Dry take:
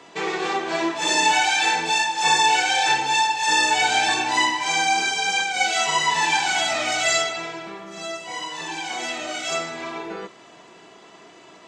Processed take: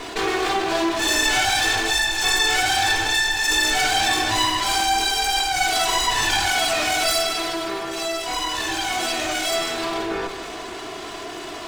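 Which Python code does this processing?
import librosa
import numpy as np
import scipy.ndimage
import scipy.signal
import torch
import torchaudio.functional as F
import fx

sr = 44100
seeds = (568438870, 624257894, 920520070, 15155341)

p1 = fx.lower_of_two(x, sr, delay_ms=2.8)
p2 = p1 + fx.echo_feedback(p1, sr, ms=153, feedback_pct=58, wet_db=-16.5, dry=0)
y = fx.env_flatten(p2, sr, amount_pct=50)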